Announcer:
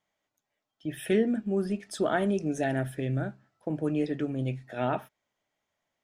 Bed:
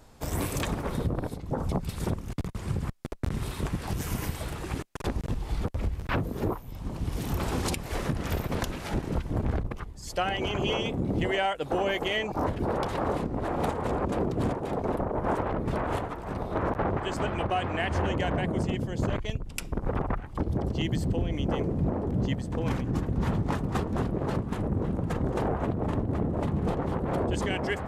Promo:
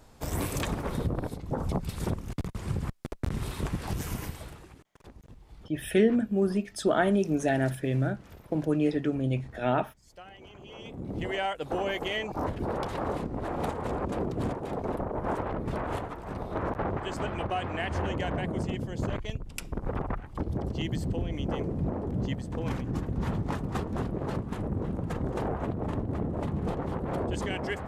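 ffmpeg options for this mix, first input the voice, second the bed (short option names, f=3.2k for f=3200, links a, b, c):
-filter_complex "[0:a]adelay=4850,volume=2.5dB[a];[1:a]volume=16dB,afade=t=out:st=3.95:d=0.79:silence=0.112202,afade=t=in:st=10.7:d=0.77:silence=0.141254[b];[a][b]amix=inputs=2:normalize=0"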